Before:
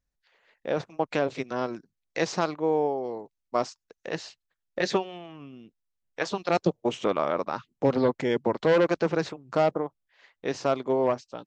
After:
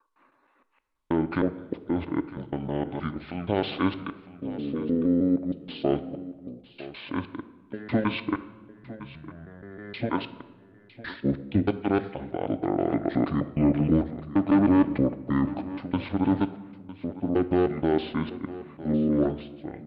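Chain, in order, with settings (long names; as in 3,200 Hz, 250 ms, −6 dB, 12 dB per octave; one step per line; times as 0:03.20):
slices reordered back to front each 91 ms, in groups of 7
wrong playback speed 78 rpm record played at 45 rpm
single-tap delay 956 ms −16 dB
on a send at −10.5 dB: convolution reverb RT60 1.5 s, pre-delay 3 ms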